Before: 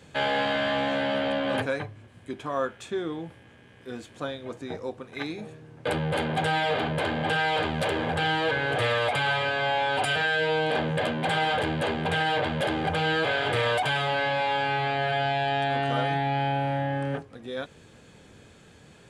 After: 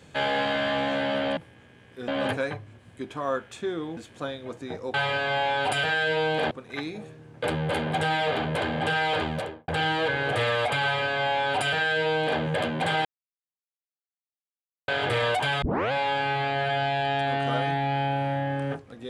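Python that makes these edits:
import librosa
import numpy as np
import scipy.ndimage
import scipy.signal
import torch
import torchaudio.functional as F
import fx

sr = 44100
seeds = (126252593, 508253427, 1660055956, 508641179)

y = fx.studio_fade_out(x, sr, start_s=7.67, length_s=0.44)
y = fx.edit(y, sr, fx.move(start_s=3.26, length_s=0.71, to_s=1.37),
    fx.duplicate(start_s=9.26, length_s=1.57, to_s=4.94),
    fx.silence(start_s=11.48, length_s=1.83),
    fx.tape_start(start_s=14.05, length_s=0.3), tone=tone)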